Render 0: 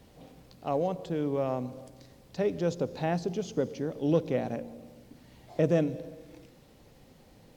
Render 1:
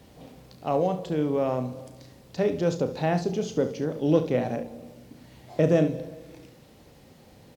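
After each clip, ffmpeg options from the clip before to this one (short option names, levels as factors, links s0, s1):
-filter_complex "[0:a]highpass=50,asplit=2[s0][s1];[s1]aecho=0:1:33|70:0.316|0.251[s2];[s0][s2]amix=inputs=2:normalize=0,volume=1.58"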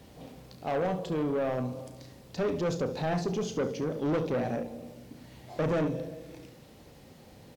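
-af "asoftclip=type=tanh:threshold=0.0596"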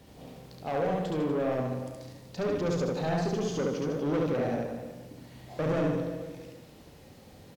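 -af "aecho=1:1:70|150.5|243.1|349.5|472:0.631|0.398|0.251|0.158|0.1,volume=0.794"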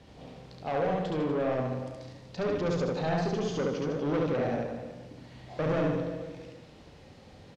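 -af "lowpass=5300,equalizer=f=260:w=0.65:g=-2.5,volume=1.19"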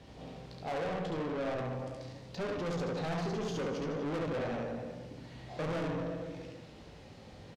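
-filter_complex "[0:a]asoftclip=type=tanh:threshold=0.0224,asplit=2[s0][s1];[s1]adelay=18,volume=0.299[s2];[s0][s2]amix=inputs=2:normalize=0"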